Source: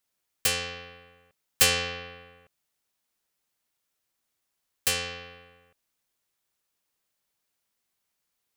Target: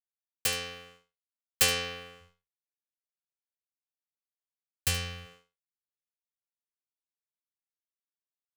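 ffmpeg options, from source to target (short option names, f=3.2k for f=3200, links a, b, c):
-filter_complex "[0:a]aeval=exprs='sgn(val(0))*max(abs(val(0))-0.00237,0)':c=same,asplit=3[a][b][c];[a]afade=t=out:st=2.2:d=0.02[d];[b]asubboost=boost=8.5:cutoff=120,afade=t=in:st=2.2:d=0.02,afade=t=out:st=5.25:d=0.02[e];[c]afade=t=in:st=5.25:d=0.02[f];[d][e][f]amix=inputs=3:normalize=0,agate=range=-33dB:threshold=-49dB:ratio=3:detection=peak,asplit=2[g][h];[h]aecho=0:1:73:0.178[i];[g][i]amix=inputs=2:normalize=0,volume=-3.5dB"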